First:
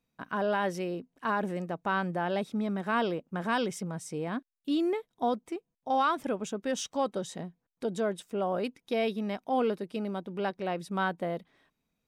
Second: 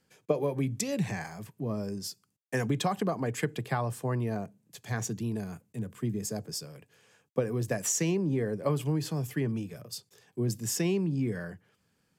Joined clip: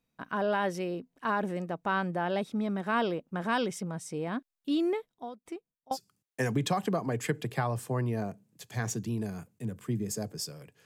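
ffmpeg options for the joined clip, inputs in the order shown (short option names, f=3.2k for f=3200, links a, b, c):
-filter_complex "[0:a]asplit=3[a][b][c];[a]afade=t=out:st=5.09:d=0.02[d];[b]aeval=exprs='val(0)*pow(10,-21*if(lt(mod(2.2*n/s,1),2*abs(2.2)/1000),1-mod(2.2*n/s,1)/(2*abs(2.2)/1000),(mod(2.2*n/s,1)-2*abs(2.2)/1000)/(1-2*abs(2.2)/1000))/20)':c=same,afade=t=in:st=5.09:d=0.02,afade=t=out:st=5.97:d=0.02[e];[c]afade=t=in:st=5.97:d=0.02[f];[d][e][f]amix=inputs=3:normalize=0,apad=whole_dur=10.85,atrim=end=10.85,atrim=end=5.97,asetpts=PTS-STARTPTS[g];[1:a]atrim=start=2.05:end=6.99,asetpts=PTS-STARTPTS[h];[g][h]acrossfade=d=0.06:c1=tri:c2=tri"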